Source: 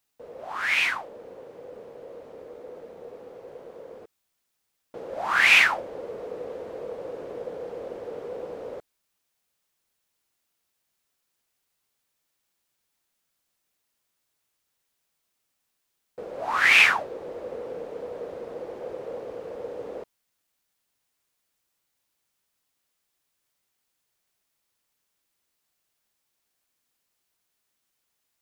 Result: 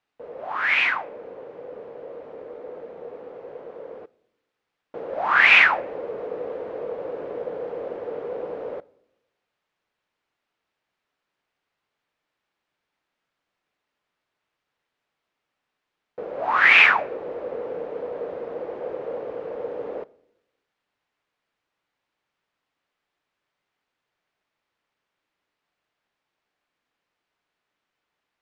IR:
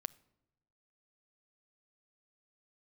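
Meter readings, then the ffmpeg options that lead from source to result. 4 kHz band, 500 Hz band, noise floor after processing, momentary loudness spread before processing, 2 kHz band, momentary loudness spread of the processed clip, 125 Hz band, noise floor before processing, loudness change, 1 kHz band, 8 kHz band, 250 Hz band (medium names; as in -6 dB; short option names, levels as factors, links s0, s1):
-0.5 dB, +4.5 dB, -83 dBFS, 22 LU, +3.5 dB, 25 LU, no reading, -78 dBFS, +1.0 dB, +5.0 dB, under -10 dB, +3.0 dB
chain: -filter_complex "[0:a]lowpass=2500,asplit=2[s0][s1];[1:a]atrim=start_sample=2205,lowshelf=f=160:g=-10[s2];[s1][s2]afir=irnorm=-1:irlink=0,volume=7.5[s3];[s0][s3]amix=inputs=2:normalize=0,volume=0.282"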